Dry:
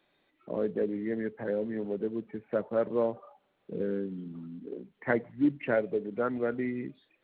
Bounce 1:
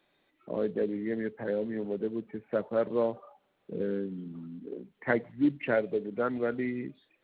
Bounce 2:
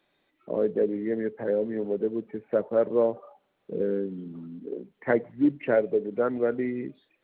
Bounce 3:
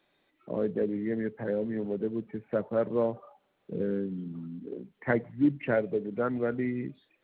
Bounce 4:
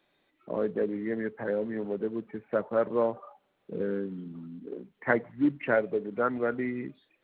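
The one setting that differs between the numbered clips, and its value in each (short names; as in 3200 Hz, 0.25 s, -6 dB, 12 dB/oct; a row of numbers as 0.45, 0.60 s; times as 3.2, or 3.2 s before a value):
dynamic EQ, frequency: 4300, 460, 120, 1200 Hz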